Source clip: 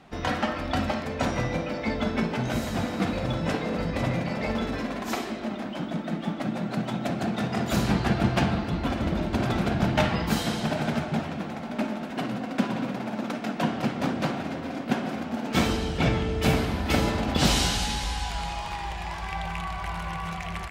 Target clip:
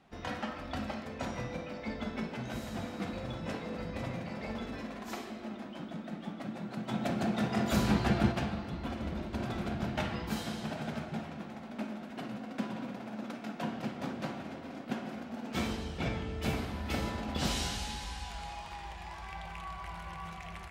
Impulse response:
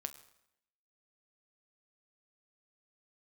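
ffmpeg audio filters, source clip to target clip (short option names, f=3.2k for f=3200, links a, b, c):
-filter_complex "[0:a]asplit=3[a][b][c];[a]afade=t=out:st=6.88:d=0.02[d];[b]acontrast=70,afade=t=in:st=6.88:d=0.02,afade=t=out:st=8.31:d=0.02[e];[c]afade=t=in:st=8.31:d=0.02[f];[d][e][f]amix=inputs=3:normalize=0[g];[1:a]atrim=start_sample=2205[h];[g][h]afir=irnorm=-1:irlink=0,volume=-8.5dB"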